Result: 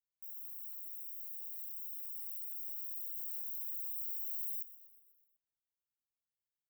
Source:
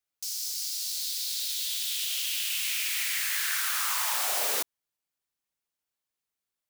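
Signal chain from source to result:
inverse Chebyshev band-stop filter 380–8,800 Hz, stop band 50 dB
echo with shifted repeats 123 ms, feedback 60%, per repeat −110 Hz, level −16 dB
level −6 dB

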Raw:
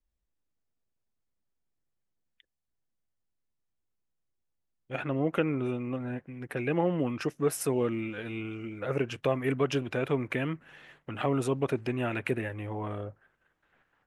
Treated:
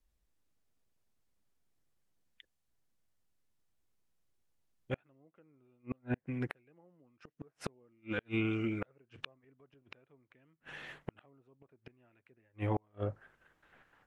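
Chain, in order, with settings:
treble cut that deepens with the level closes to 1,600 Hz, closed at −23.5 dBFS
gate with flip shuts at −26 dBFS, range −41 dB
level +4.5 dB

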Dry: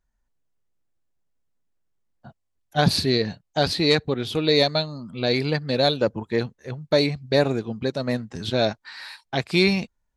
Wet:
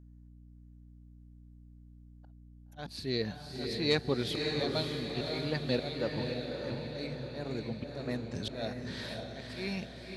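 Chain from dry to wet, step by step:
volume swells 520 ms
feedback delay with all-pass diffusion 569 ms, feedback 55%, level −3.5 dB
mains hum 60 Hz, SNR 17 dB
level −6 dB

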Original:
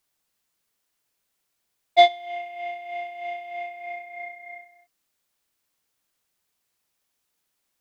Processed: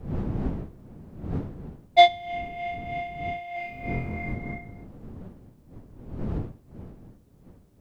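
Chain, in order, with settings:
wind on the microphone 210 Hz −36 dBFS
0:03.54–0:04.34: flutter between parallel walls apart 4 metres, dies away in 0.45 s

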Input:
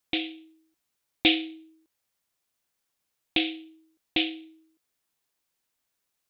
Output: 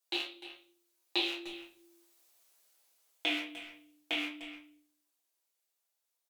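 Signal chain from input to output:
loose part that buzzes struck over −43 dBFS, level −16 dBFS
source passing by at 0:02.29, 27 m/s, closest 15 metres
high-pass filter 380 Hz 24 dB per octave
tilt shelving filter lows +4 dB
downward compressor 3 to 1, threshold −43 dBFS, peak gain reduction 13 dB
high-shelf EQ 3,100 Hz +12 dB
far-end echo of a speakerphone 300 ms, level −11 dB
convolution reverb RT60 0.40 s, pre-delay 6 ms, DRR −5 dB
level +1 dB

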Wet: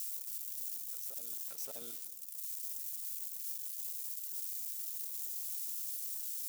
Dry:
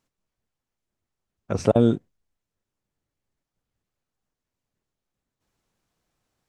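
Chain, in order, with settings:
spike at every zero crossing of −21 dBFS
first difference
brickwall limiter −25 dBFS, peak gain reduction 10.5 dB
backwards echo 575 ms −8.5 dB
on a send at −16 dB: convolution reverb RT60 1.5 s, pre-delay 3 ms
on the sum: level −4.5 dB

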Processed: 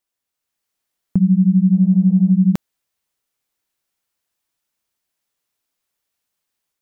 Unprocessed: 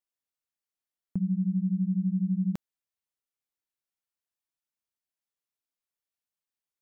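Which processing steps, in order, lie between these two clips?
automatic gain control gain up to 5 dB
0:01.71–0:02.33: noise in a band 230–700 Hz −61 dBFS
level +9 dB

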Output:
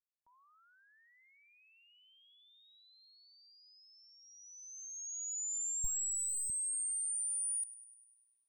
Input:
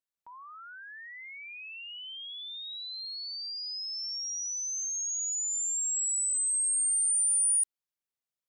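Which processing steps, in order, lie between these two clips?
0:05.84–0:06.50: lower of the sound and its delayed copy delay 0.38 ms
spectral tilt −2.5 dB per octave
noise gate −39 dBFS, range −25 dB
speech leveller within 5 dB 0.5 s
delay with a high-pass on its return 100 ms, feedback 63%, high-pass 2,700 Hz, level −16 dB

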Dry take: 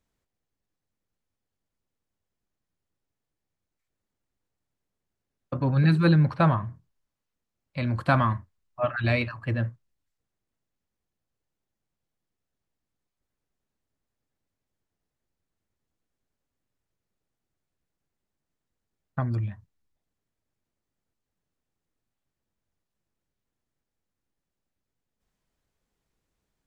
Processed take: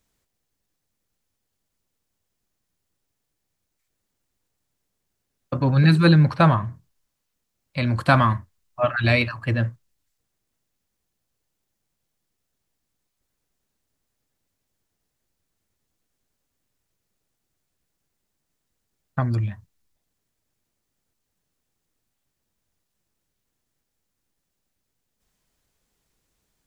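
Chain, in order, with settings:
high-shelf EQ 3,300 Hz +8 dB
level +4.5 dB

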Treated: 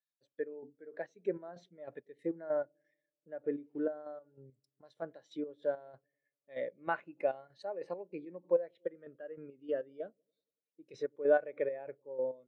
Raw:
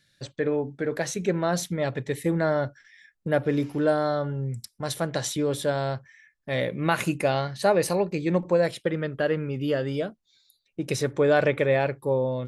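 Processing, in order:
high-pass filter 280 Hz 12 dB per octave
treble cut that deepens with the level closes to 2,800 Hz, closed at −23.5 dBFS
square-wave tremolo 3.2 Hz, depth 65%, duty 40%
0:04.01–0:05.02: downward compressor 2 to 1, threshold −36 dBFS, peak gain reduction 7.5 dB
on a send: delay with a low-pass on its return 96 ms, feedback 69%, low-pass 420 Hz, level −22 dB
on the sum: every bin expanded away from the loudest bin 1.5 to 1
level −6.5 dB

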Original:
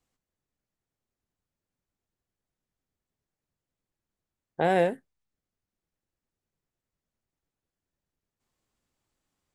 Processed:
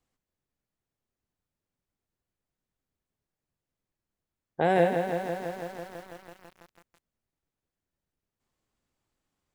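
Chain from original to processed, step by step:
high-shelf EQ 4,100 Hz −4 dB
feedback echo at a low word length 165 ms, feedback 80%, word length 8 bits, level −7 dB

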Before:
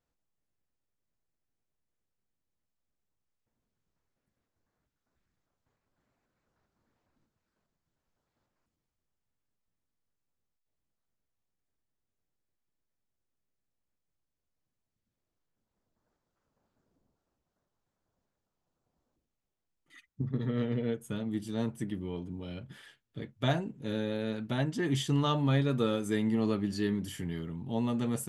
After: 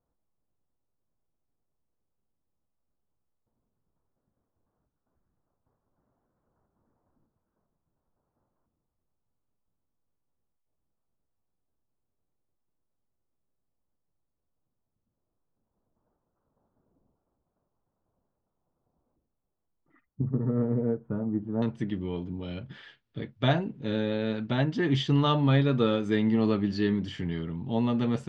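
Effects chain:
low-pass filter 1,200 Hz 24 dB per octave, from 0:21.62 4,700 Hz
level +4.5 dB

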